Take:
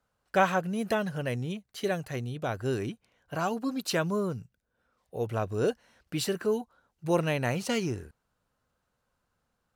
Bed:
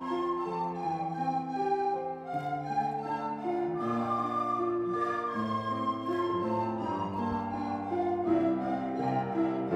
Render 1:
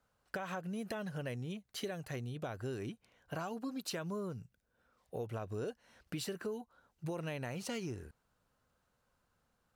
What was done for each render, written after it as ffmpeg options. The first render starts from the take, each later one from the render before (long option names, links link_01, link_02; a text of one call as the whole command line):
ffmpeg -i in.wav -af "alimiter=limit=-20dB:level=0:latency=1:release=91,acompressor=threshold=-39dB:ratio=4" out.wav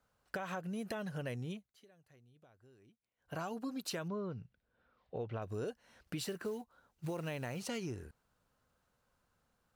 ffmpeg -i in.wav -filter_complex "[0:a]asettb=1/sr,asplit=3[link_01][link_02][link_03];[link_01]atrim=end=4.084[link_04];[link_02]atrim=start=4.08:end=5.42,asetpts=PTS-STARTPTS,afade=type=in:duration=0.004:curve=qsin,afade=type=out:start_time=1.336:duration=0.004:curve=qsin,lowpass=frequency=4200:width=0.5412,lowpass=frequency=4200:width=1.3066[link_05];[link_03]atrim=start=5.416[link_06];[link_04][link_05]acrossfade=duration=0.004:curve1=hsin:curve2=qsin[link_07];[link_07][link_06]acrossfade=duration=0.004:curve1=qsin:curve2=hsin,asettb=1/sr,asplit=3[link_08][link_09][link_10];[link_08]atrim=end=6.194[link_11];[link_09]atrim=start=6.19:end=7.6,asetpts=PTS-STARTPTS,afade=type=in:duration=0.004:curve=qsin,afade=type=out:start_time=1.406:duration=0.004:curve=qsin,acrusher=bits=6:mode=log:mix=0:aa=0.000001[link_12];[link_10]atrim=start=7.596[link_13];[link_11][link_12]acrossfade=duration=0.004:curve1=hsin:curve2=qsin[link_14];[link_14][link_13]acrossfade=duration=0.004:curve1=qsin:curve2=hsin,asplit=3[link_15][link_16][link_17];[link_15]atrim=end=1.73,asetpts=PTS-STARTPTS,afade=type=out:start_time=1.51:duration=0.22:silence=0.0668344[link_18];[link_16]atrim=start=1.73:end=3.17,asetpts=PTS-STARTPTS,volume=-23.5dB[link_19];[link_17]atrim=start=3.17,asetpts=PTS-STARTPTS,afade=type=in:duration=0.22:silence=0.0668344[link_20];[link_18][link_19][link_20]concat=n=3:v=0:a=1" out.wav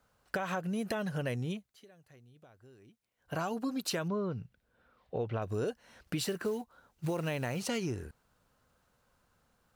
ffmpeg -i in.wav -af "volume=6dB" out.wav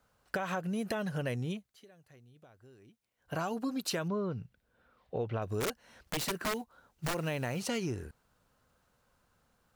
ffmpeg -i in.wav -filter_complex "[0:a]asplit=3[link_01][link_02][link_03];[link_01]afade=type=out:start_time=5.6:duration=0.02[link_04];[link_02]aeval=exprs='(mod(23.7*val(0)+1,2)-1)/23.7':channel_layout=same,afade=type=in:start_time=5.6:duration=0.02,afade=type=out:start_time=7.13:duration=0.02[link_05];[link_03]afade=type=in:start_time=7.13:duration=0.02[link_06];[link_04][link_05][link_06]amix=inputs=3:normalize=0" out.wav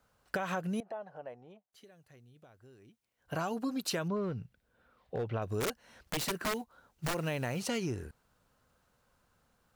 ffmpeg -i in.wav -filter_complex "[0:a]asettb=1/sr,asplit=3[link_01][link_02][link_03];[link_01]atrim=end=0.804[link_04];[link_02]atrim=start=0.8:end=1.73,asetpts=PTS-STARTPTS,afade=type=in:duration=0.004:curve=qsin,afade=type=out:start_time=0.926:duration=0.004:curve=qsin,bandpass=frequency=750:width_type=q:width=3.3[link_05];[link_03]atrim=start=1.726[link_06];[link_04][link_05]acrossfade=duration=0.004:curve1=hsin:curve2=qsin[link_07];[link_07][link_06]acrossfade=duration=0.004:curve1=qsin:curve2=hsin,asettb=1/sr,asplit=3[link_08][link_09][link_10];[link_08]atrim=end=4.164[link_11];[link_09]atrim=start=4.16:end=5.3,asetpts=PTS-STARTPTS,afade=type=in:duration=0.004:curve=qsin,afade=type=out:start_time=1.136:duration=0.004:curve=qsin,asoftclip=type=hard:threshold=-29.5dB[link_12];[link_10]atrim=start=5.296[link_13];[link_11][link_12]acrossfade=duration=0.004:curve1=hsin:curve2=qsin[link_14];[link_14][link_13]acrossfade=duration=0.004:curve1=qsin:curve2=hsin" out.wav